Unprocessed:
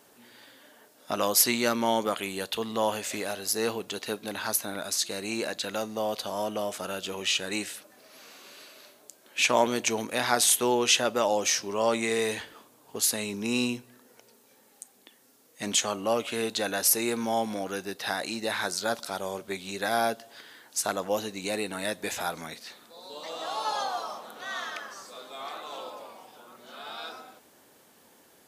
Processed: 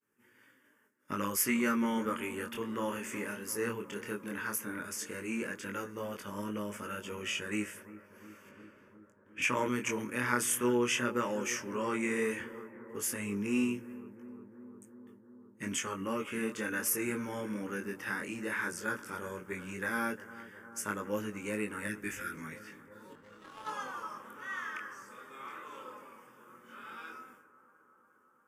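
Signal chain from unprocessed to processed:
0:08.49–0:09.42: RIAA equalisation playback
0:21.87–0:22.35: elliptic band-stop filter 380–1,400 Hz
high-shelf EQ 3,600 Hz −7 dB
downward expander −49 dBFS
phaser with its sweep stopped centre 1,700 Hz, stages 4
0:23.13–0:23.68: power curve on the samples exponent 2
chorus effect 0.14 Hz, delay 19 ms, depth 5.8 ms
bucket-brigade delay 354 ms, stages 4,096, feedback 75%, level −16.5 dB
level +2.5 dB

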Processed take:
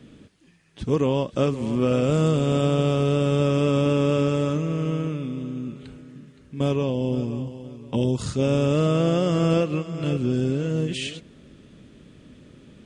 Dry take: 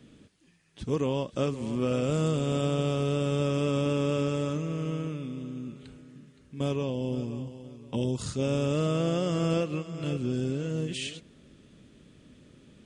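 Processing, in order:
high-shelf EQ 4,300 Hz −5.5 dB
level +6.5 dB

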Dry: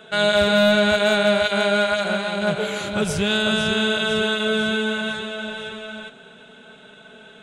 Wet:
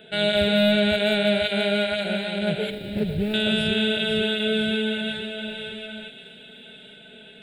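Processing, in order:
0:02.70–0:03.34: running median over 41 samples
phaser with its sweep stopped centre 2,700 Hz, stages 4
delay with a high-pass on its return 1,096 ms, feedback 48%, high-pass 2,100 Hz, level −14.5 dB

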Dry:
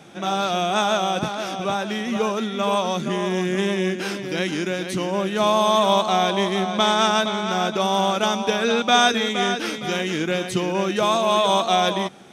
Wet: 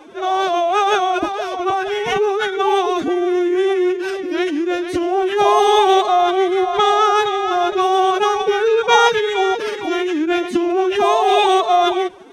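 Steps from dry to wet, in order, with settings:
high-shelf EQ 2,600 Hz −11.5 dB
phase-vocoder pitch shift with formants kept +11.5 semitones
level +6.5 dB

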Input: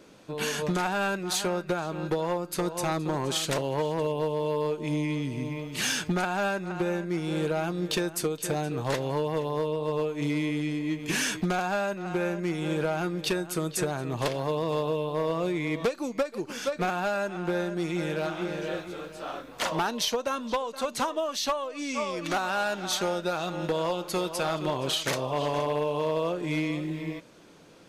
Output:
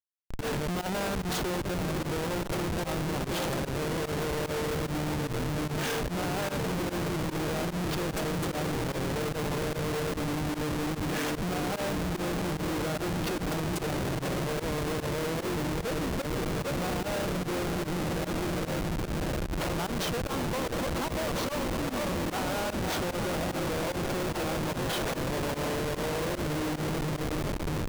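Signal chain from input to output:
feedback delay with all-pass diffusion 662 ms, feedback 80%, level −6 dB
comparator with hysteresis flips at −27 dBFS
fake sidechain pumping 148 BPM, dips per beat 1, −20 dB, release 63 ms
level −3 dB

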